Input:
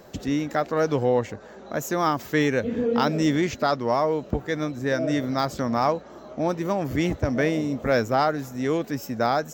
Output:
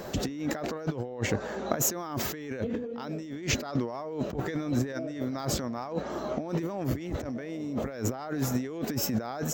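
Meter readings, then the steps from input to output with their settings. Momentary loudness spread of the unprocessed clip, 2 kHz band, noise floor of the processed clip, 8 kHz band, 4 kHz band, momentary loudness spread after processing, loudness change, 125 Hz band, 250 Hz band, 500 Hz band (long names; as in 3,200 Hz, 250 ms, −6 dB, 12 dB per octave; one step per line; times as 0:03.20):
6 LU, −9.0 dB, −39 dBFS, +6.0 dB, −4.0 dB, 5 LU, −7.5 dB, −3.5 dB, −6.5 dB, −10.0 dB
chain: dynamic equaliser 340 Hz, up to +3 dB, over −31 dBFS, Q 1.5
compressor whose output falls as the input rises −33 dBFS, ratio −1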